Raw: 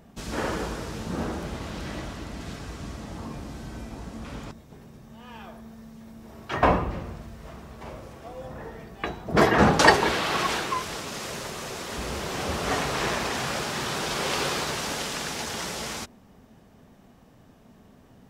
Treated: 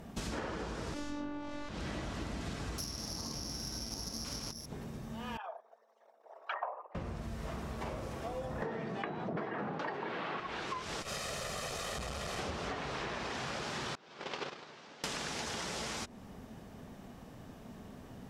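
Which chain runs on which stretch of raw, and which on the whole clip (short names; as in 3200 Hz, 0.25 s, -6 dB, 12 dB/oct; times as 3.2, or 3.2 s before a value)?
0.94–1.69 flutter echo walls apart 3.7 m, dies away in 1.2 s + robotiser 293 Hz
2.78–4.66 steep low-pass 3200 Hz + careless resampling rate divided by 8×, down none, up zero stuff + Doppler distortion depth 0.18 ms
5.37–6.95 formant sharpening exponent 2 + steep high-pass 570 Hz
8.62–10.4 HPF 130 Hz 24 dB/oct + high shelf 4400 Hz -7 dB + fast leveller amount 50%
11.02–12.39 minimum comb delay 1.6 ms + core saturation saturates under 320 Hz
13.95–15.04 BPF 170–6100 Hz + air absorption 84 m + gate -27 dBFS, range -25 dB
whole clip: treble ducked by the level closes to 2800 Hz, closed at -20 dBFS; compressor 16:1, threshold -39 dBFS; gain +3.5 dB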